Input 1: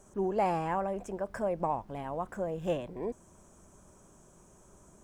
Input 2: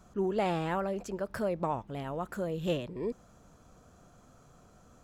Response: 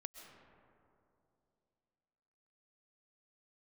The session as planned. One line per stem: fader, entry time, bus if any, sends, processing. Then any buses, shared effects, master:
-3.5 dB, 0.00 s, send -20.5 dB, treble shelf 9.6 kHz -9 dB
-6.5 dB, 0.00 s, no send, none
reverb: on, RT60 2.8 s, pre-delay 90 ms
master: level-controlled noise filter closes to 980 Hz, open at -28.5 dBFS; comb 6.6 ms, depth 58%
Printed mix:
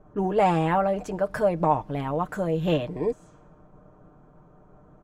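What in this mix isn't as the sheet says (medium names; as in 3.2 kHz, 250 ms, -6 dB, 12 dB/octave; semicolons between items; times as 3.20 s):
stem 1 -3.5 dB -> +2.5 dB; stem 2 -6.5 dB -> +0.5 dB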